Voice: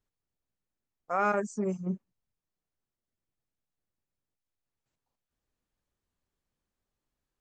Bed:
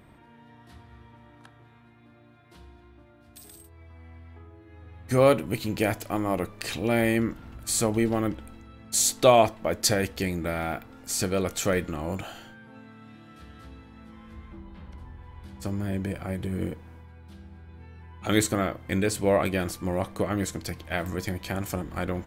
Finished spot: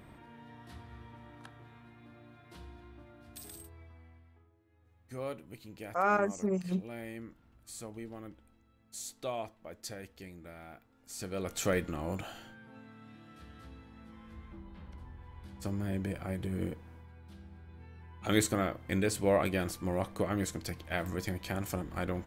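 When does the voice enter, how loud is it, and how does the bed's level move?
4.85 s, -0.5 dB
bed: 3.65 s 0 dB
4.57 s -20 dB
10.93 s -20 dB
11.65 s -5 dB

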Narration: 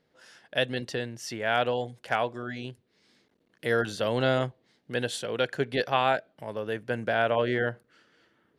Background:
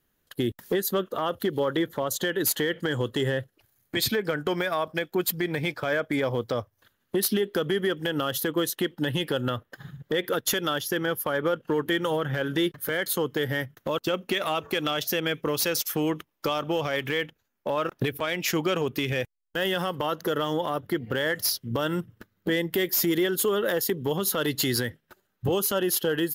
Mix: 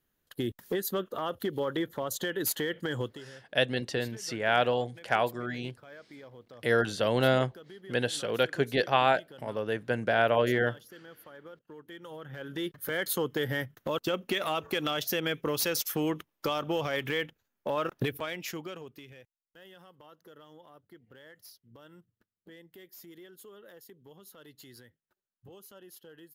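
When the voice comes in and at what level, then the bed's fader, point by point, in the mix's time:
3.00 s, +0.5 dB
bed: 3.04 s -5.5 dB
3.24 s -23 dB
11.82 s -23 dB
12.98 s -3.5 dB
18.07 s -3.5 dB
19.28 s -26.5 dB

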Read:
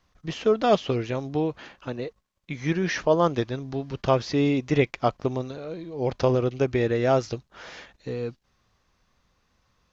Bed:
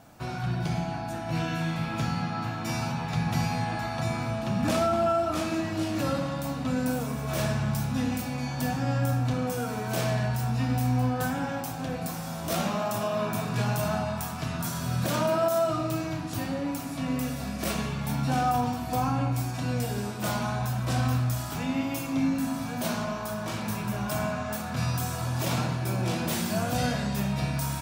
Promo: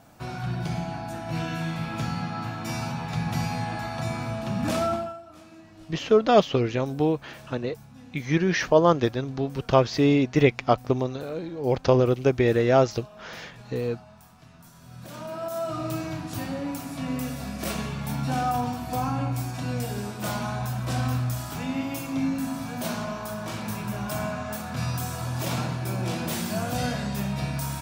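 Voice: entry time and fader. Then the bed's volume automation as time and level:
5.65 s, +2.5 dB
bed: 4.93 s -0.5 dB
5.22 s -19.5 dB
14.74 s -19.5 dB
15.89 s -0.5 dB

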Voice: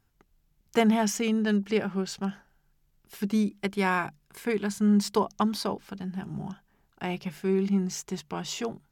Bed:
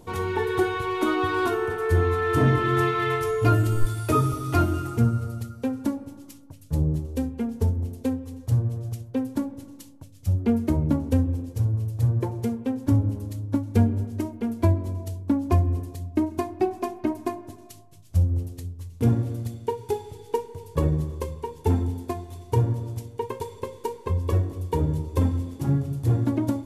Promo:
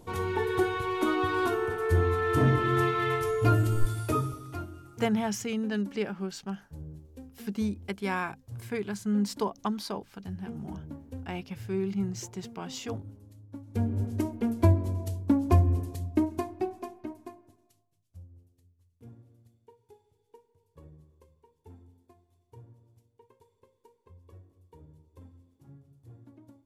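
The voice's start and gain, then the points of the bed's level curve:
4.25 s, -5.0 dB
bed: 4.01 s -3.5 dB
4.72 s -19.5 dB
13.53 s -19.5 dB
14.04 s -1 dB
16.10 s -1 dB
18.33 s -29.5 dB

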